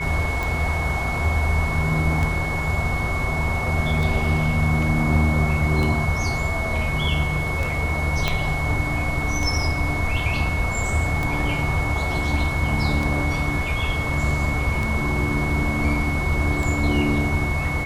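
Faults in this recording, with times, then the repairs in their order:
scratch tick 33 1/3 rpm
whistle 2,200 Hz −27 dBFS
0:08.28: click −7 dBFS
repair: click removal
notch filter 2,200 Hz, Q 30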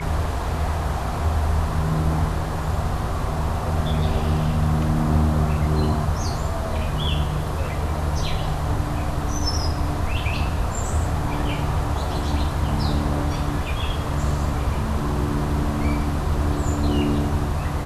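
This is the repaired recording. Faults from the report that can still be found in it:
0:08.28: click

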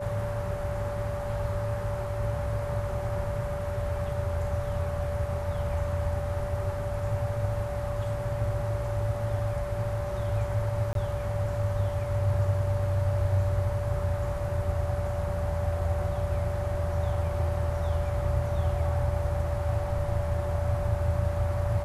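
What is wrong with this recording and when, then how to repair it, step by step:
whistle 580 Hz −33 dBFS
0:10.93–0:10.95: drop-out 22 ms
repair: notch filter 580 Hz, Q 30
repair the gap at 0:10.93, 22 ms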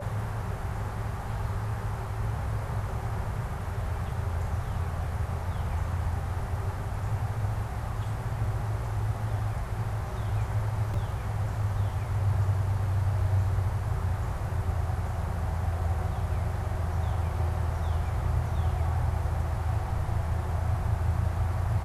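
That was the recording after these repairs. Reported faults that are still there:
none of them is left

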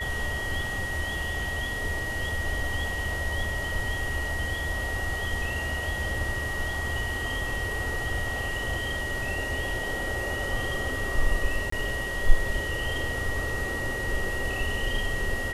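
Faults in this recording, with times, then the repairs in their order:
whistle 1,900 Hz −31 dBFS
0:11.70–0:11.72: drop-out 24 ms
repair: notch filter 1,900 Hz, Q 30
repair the gap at 0:11.70, 24 ms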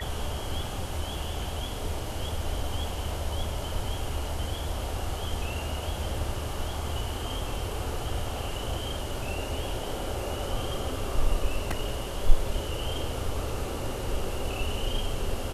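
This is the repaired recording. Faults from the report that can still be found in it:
none of them is left

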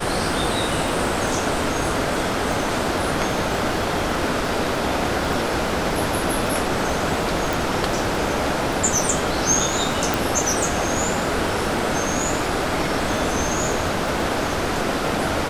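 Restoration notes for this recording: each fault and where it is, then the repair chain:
surface crackle 36 per second −27 dBFS
0:07.53: click
0:10.14: click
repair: click removal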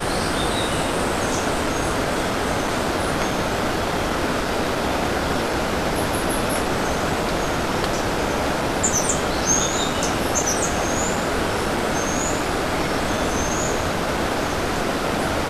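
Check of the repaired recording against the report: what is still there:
0:07.53: click

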